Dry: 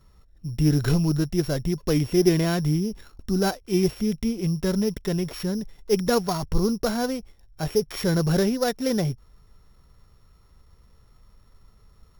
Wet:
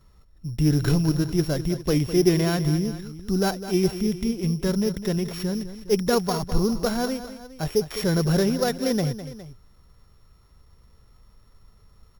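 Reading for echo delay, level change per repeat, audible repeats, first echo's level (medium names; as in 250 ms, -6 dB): 205 ms, -4.5 dB, 2, -12.5 dB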